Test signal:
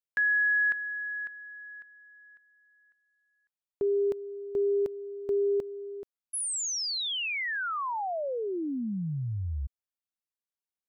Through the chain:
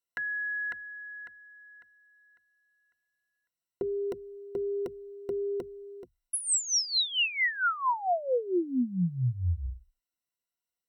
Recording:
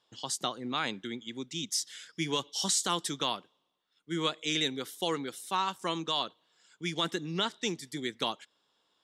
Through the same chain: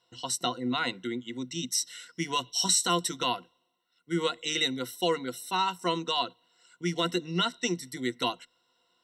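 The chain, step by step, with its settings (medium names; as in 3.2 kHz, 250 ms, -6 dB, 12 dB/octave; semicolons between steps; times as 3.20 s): rippled EQ curve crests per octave 2, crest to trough 16 dB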